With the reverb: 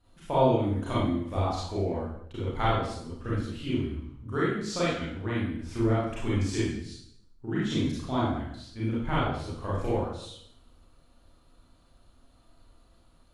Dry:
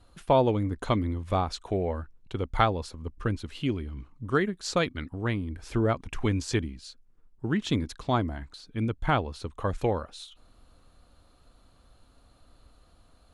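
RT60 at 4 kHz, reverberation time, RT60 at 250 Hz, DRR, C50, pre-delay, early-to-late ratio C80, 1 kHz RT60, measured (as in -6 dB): 0.65 s, 0.70 s, 0.85 s, -9.0 dB, -1.5 dB, 30 ms, 3.5 dB, 0.65 s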